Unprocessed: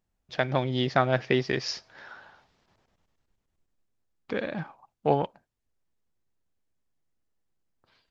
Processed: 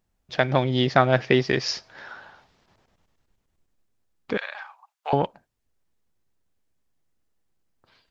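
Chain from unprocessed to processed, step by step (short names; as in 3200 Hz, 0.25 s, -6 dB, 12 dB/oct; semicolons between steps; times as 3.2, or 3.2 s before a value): 4.37–5.13 HPF 890 Hz 24 dB/oct; gain +5 dB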